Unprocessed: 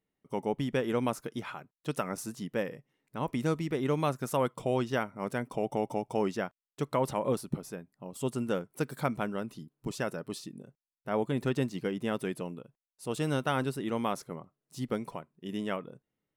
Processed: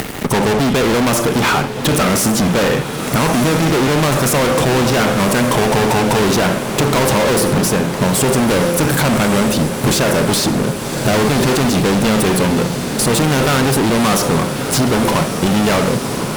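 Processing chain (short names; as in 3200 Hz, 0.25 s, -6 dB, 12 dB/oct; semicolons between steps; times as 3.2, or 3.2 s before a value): de-hum 172.6 Hz, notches 3; upward compressor, threshold -39 dBFS; Schroeder reverb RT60 0.48 s, combs from 29 ms, DRR 15 dB; fuzz box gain 50 dB, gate -60 dBFS; diffused feedback echo 1.143 s, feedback 70%, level -11 dB; three-band squash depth 40%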